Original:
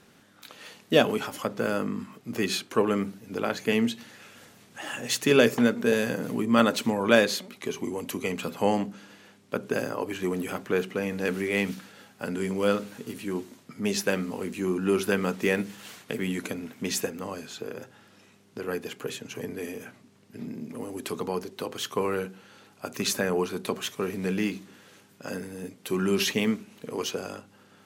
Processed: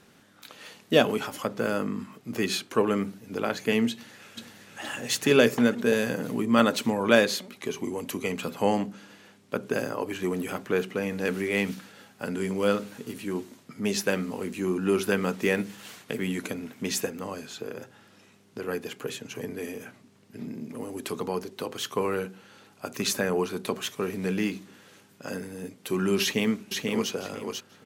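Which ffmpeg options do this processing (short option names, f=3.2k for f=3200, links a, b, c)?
-filter_complex "[0:a]asplit=2[a][b];[b]afade=t=in:st=3.9:d=0.01,afade=t=out:st=4.8:d=0.01,aecho=0:1:470|940|1410|1880|2350|2820|3290|3760|4230:0.668344|0.401006|0.240604|0.144362|0.0866174|0.0519704|0.0311823|0.0187094|0.0112256[c];[a][c]amix=inputs=2:normalize=0,asplit=2[d][e];[e]afade=t=in:st=26.22:d=0.01,afade=t=out:st=27.11:d=0.01,aecho=0:1:490|980|1470:0.630957|0.126191|0.0252383[f];[d][f]amix=inputs=2:normalize=0"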